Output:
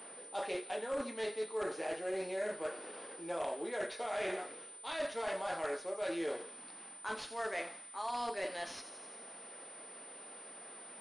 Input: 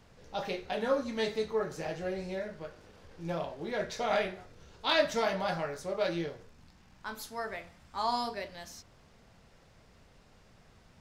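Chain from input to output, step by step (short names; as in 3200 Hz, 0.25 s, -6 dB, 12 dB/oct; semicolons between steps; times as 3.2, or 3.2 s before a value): HPF 290 Hz 24 dB/oct; reverse; compressor 12:1, threshold -43 dBFS, peak gain reduction 22.5 dB; reverse; wavefolder -38.5 dBFS; thin delay 86 ms, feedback 69%, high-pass 3500 Hz, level -10 dB; pulse-width modulation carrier 9000 Hz; gain +9.5 dB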